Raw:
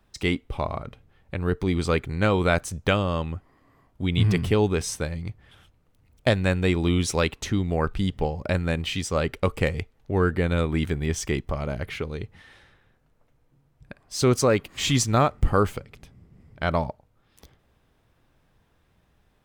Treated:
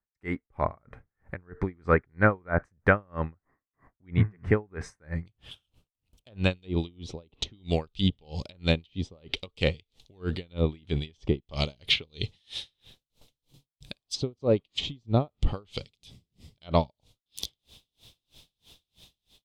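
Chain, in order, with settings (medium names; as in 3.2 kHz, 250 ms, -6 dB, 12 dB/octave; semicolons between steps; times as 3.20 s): level rider gain up to 13 dB; resonant high shelf 2.4 kHz -9.5 dB, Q 3, from 5.26 s +7 dB, from 6.51 s +14 dB; gate with hold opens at -39 dBFS; low-pass that closes with the level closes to 770 Hz, closed at -5 dBFS; logarithmic tremolo 3.1 Hz, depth 37 dB; trim -6 dB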